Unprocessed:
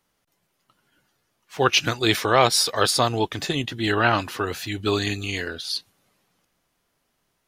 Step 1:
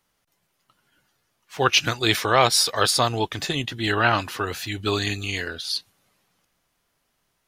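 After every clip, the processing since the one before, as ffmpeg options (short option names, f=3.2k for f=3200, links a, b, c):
-af "equalizer=f=310:w=0.6:g=-3.5,volume=1dB"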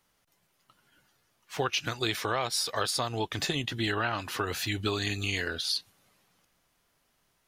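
-af "acompressor=threshold=-26dB:ratio=8"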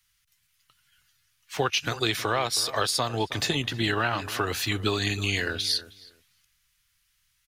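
-filter_complex "[0:a]acrossover=split=120|1500|2200[a][b][c][d];[b]aeval=exprs='sgn(val(0))*max(abs(val(0))-0.00158,0)':c=same[e];[a][e][c][d]amix=inputs=4:normalize=0,asplit=2[f][g];[g]adelay=318,lowpass=f=1.5k:p=1,volume=-14.5dB,asplit=2[h][i];[i]adelay=318,lowpass=f=1.5k:p=1,volume=0.18[j];[f][h][j]amix=inputs=3:normalize=0,volume=4dB"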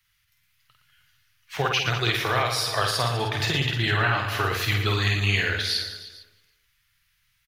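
-af "equalizer=f=125:t=o:w=1:g=7,equalizer=f=250:t=o:w=1:g=-8,equalizer=f=2k:t=o:w=1:g=4,equalizer=f=8k:t=o:w=1:g=-7,aecho=1:1:50|115|199.5|309.4|452.2:0.631|0.398|0.251|0.158|0.1"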